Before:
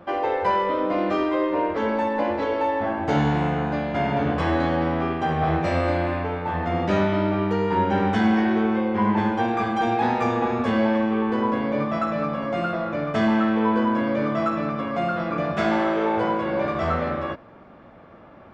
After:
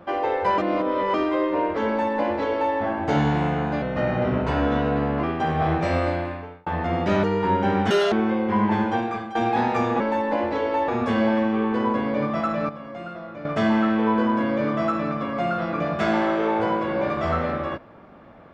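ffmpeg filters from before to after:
ffmpeg -i in.wav -filter_complex "[0:a]asplit=14[link_01][link_02][link_03][link_04][link_05][link_06][link_07][link_08][link_09][link_10][link_11][link_12][link_13][link_14];[link_01]atrim=end=0.582[link_15];[link_02]atrim=start=0.578:end=1.142,asetpts=PTS-STARTPTS,areverse[link_16];[link_03]atrim=start=1.138:end=3.824[link_17];[link_04]atrim=start=3.82:end=5.05,asetpts=PTS-STARTPTS,asetrate=38367,aresample=44100,atrim=end_sample=62348,asetpts=PTS-STARTPTS[link_18];[link_05]atrim=start=5.046:end=6.48,asetpts=PTS-STARTPTS,afade=type=out:start_time=0.764:duration=0.67[link_19];[link_06]atrim=start=6.48:end=7.052,asetpts=PTS-STARTPTS,afade=type=in:duration=0.004:curve=hsin[link_20];[link_07]atrim=start=7.508:end=8.184[link_21];[link_08]atrim=start=8.18:end=8.58,asetpts=PTS-STARTPTS,asetrate=81144,aresample=44100[link_22];[link_09]atrim=start=8.576:end=9.81,asetpts=PTS-STARTPTS,afade=type=out:start_time=0.794:duration=0.44:silence=0.199526[link_23];[link_10]atrim=start=9.81:end=10.462,asetpts=PTS-STARTPTS,afade=type=in:duration=0.004:curve=hsin:silence=0.199526[link_24];[link_11]atrim=start=1.868:end=2.752[link_25];[link_12]atrim=start=10.458:end=12.272[link_26];[link_13]atrim=start=12.268:end=13.032,asetpts=PTS-STARTPTS,volume=-10dB[link_27];[link_14]atrim=start=13.028[link_28];[link_15][link_16]acrossfade=duration=0.004:curve1=hsin:curve2=hsin[link_29];[link_29][link_17]acrossfade=duration=0.004:curve1=hsin:curve2=hsin[link_30];[link_30][link_18]acrossfade=duration=0.004:curve1=hsin:curve2=hsin[link_31];[link_19][link_20]concat=n=2:v=0:a=1[link_32];[link_31][link_32]acrossfade=duration=0.004:curve1=hsin:curve2=hsin[link_33];[link_33][link_21]acrossfade=duration=0.004:curve1=hsin:curve2=hsin[link_34];[link_34][link_22]acrossfade=duration=0.004:curve1=hsin:curve2=hsin[link_35];[link_23][link_24]concat=n=2:v=0:a=1[link_36];[link_35][link_36]acrossfade=duration=0.004:curve1=hsin:curve2=hsin[link_37];[link_37][link_25]acrossfade=duration=0.004:curve1=hsin:curve2=hsin[link_38];[link_38][link_26]acrossfade=duration=0.004:curve1=hsin:curve2=hsin[link_39];[link_39][link_27]acrossfade=duration=0.004:curve1=hsin:curve2=hsin[link_40];[link_40][link_28]acrossfade=duration=0.004:curve1=hsin:curve2=hsin" out.wav

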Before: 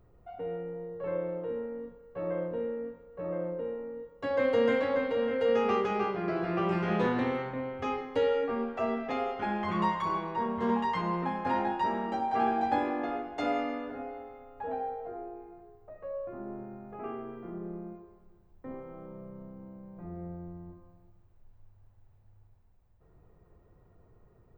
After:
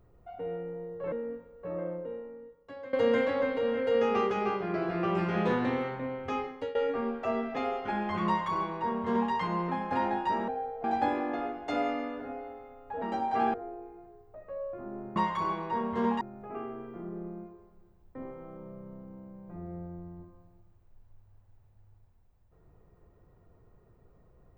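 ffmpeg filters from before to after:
ffmpeg -i in.wav -filter_complex "[0:a]asplit=10[link_01][link_02][link_03][link_04][link_05][link_06][link_07][link_08][link_09][link_10];[link_01]atrim=end=1.122[link_11];[link_02]atrim=start=2.658:end=4.47,asetpts=PTS-STARTPTS,afade=type=out:start_time=0.512:duration=1.3:silence=0.112202[link_12];[link_03]atrim=start=4.47:end=8.29,asetpts=PTS-STARTPTS,afade=type=in:duration=0.004:curve=hsin:silence=0.112202,afade=type=out:start_time=3.38:duration=0.44:curve=qsin:silence=0.1[link_13];[link_04]atrim=start=8.29:end=12.022,asetpts=PTS-STARTPTS,afade=type=in:duration=0.004:curve=hsin:silence=0.1[link_14];[link_05]atrim=start=14.718:end=15.082[link_15];[link_06]atrim=start=12.538:end=14.722[link_16];[link_07]atrim=start=12.018:end=12.542[link_17];[link_08]atrim=start=15.078:end=16.702[link_18];[link_09]atrim=start=9.808:end=10.862[link_19];[link_10]atrim=start=16.698[link_20];[link_12][link_13][link_14]concat=n=3:v=0:a=1[link_21];[link_11][link_21]acrossfade=duration=0.004:curve1=hsin:curve2=hsin[link_22];[link_22][link_15]acrossfade=duration=0.004:curve1=hsin:curve2=hsin[link_23];[link_23][link_16]acrossfade=duration=0.004:curve1=hsin:curve2=hsin[link_24];[link_24][link_17]acrossfade=duration=0.004:curve1=hsin:curve2=hsin[link_25];[link_25][link_18]acrossfade=duration=0.004:curve1=hsin:curve2=hsin[link_26];[link_26][link_19]acrossfade=duration=0.004:curve1=hsin:curve2=hsin[link_27];[link_27][link_20]acrossfade=duration=0.004:curve1=hsin:curve2=hsin" out.wav

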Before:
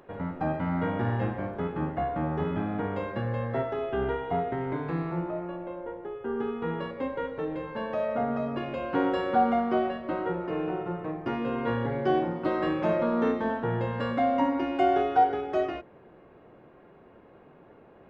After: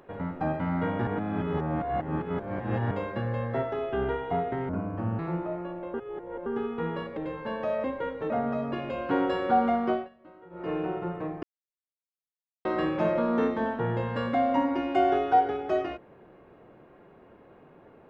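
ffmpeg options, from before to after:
ffmpeg -i in.wav -filter_complex "[0:a]asplit=14[link_01][link_02][link_03][link_04][link_05][link_06][link_07][link_08][link_09][link_10][link_11][link_12][link_13][link_14];[link_01]atrim=end=1.072[link_15];[link_02]atrim=start=1.068:end=2.912,asetpts=PTS-STARTPTS,areverse[link_16];[link_03]atrim=start=2.908:end=4.694[link_17];[link_04]atrim=start=4.69:end=5.03,asetpts=PTS-STARTPTS,asetrate=29988,aresample=44100[link_18];[link_05]atrim=start=5.026:end=5.782[link_19];[link_06]atrim=start=5.778:end=6.302,asetpts=PTS-STARTPTS,areverse[link_20];[link_07]atrim=start=6.298:end=7.012[link_21];[link_08]atrim=start=7.468:end=8.142[link_22];[link_09]atrim=start=7.008:end=7.472[link_23];[link_10]atrim=start=8.138:end=9.93,asetpts=PTS-STARTPTS,afade=type=out:start_time=1.592:duration=0.2:silence=0.0891251[link_24];[link_11]atrim=start=9.93:end=10.34,asetpts=PTS-STARTPTS,volume=-21dB[link_25];[link_12]atrim=start=10.34:end=11.27,asetpts=PTS-STARTPTS,afade=type=in:duration=0.2:silence=0.0891251,afade=type=out:start_time=0.926:duration=0.004:curve=hsin[link_26];[link_13]atrim=start=11.27:end=12.49,asetpts=PTS-STARTPTS,volume=0[link_27];[link_14]atrim=start=12.49,asetpts=PTS-STARTPTS,afade=type=in:duration=0.004:curve=hsin[link_28];[link_15][link_16]acrossfade=duration=0.004:curve1=hsin:curve2=hsin[link_29];[link_29][link_17]acrossfade=duration=0.004:curve1=hsin:curve2=hsin[link_30];[link_30][link_18]acrossfade=duration=0.004:curve1=hsin:curve2=hsin[link_31];[link_31][link_19]acrossfade=duration=0.004:curve1=hsin:curve2=hsin[link_32];[link_32][link_20]acrossfade=duration=0.004:curve1=hsin:curve2=hsin[link_33];[link_33][link_21]acrossfade=duration=0.004:curve1=hsin:curve2=hsin[link_34];[link_34][link_22]acrossfade=duration=0.004:curve1=hsin:curve2=hsin[link_35];[link_35][link_23]acrossfade=duration=0.004:curve1=hsin:curve2=hsin[link_36];[link_24][link_25][link_26][link_27][link_28]concat=n=5:v=0:a=1[link_37];[link_36][link_37]acrossfade=duration=0.004:curve1=hsin:curve2=hsin" out.wav

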